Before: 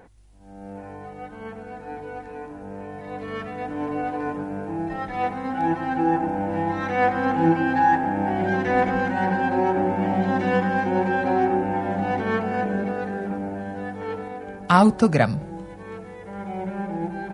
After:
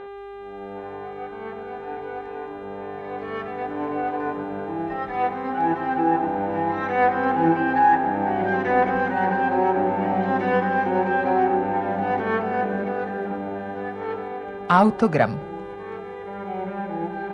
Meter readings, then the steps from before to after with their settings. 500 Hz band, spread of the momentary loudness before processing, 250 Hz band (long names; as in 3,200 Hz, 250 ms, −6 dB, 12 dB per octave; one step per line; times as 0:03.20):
+1.5 dB, 18 LU, −2.0 dB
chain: hum with harmonics 400 Hz, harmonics 10, −38 dBFS −9 dB per octave
mid-hump overdrive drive 10 dB, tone 1,200 Hz, clips at −1.5 dBFS